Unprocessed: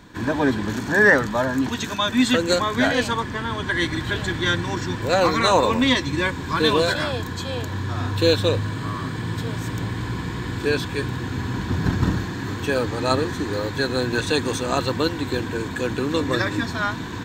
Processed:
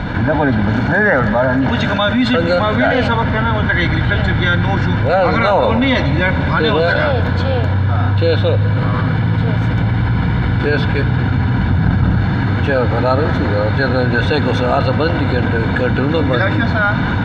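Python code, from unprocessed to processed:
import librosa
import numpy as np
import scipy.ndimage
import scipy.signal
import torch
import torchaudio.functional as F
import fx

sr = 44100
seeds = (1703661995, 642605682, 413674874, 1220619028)

y = fx.air_absorb(x, sr, metres=360.0)
y = y + 0.6 * np.pad(y, (int(1.4 * sr / 1000.0), 0))[:len(y)]
y = fx.rev_freeverb(y, sr, rt60_s=3.8, hf_ratio=0.8, predelay_ms=30, drr_db=15.5)
y = fx.env_flatten(y, sr, amount_pct=70)
y = F.gain(torch.from_numpy(y), 3.0).numpy()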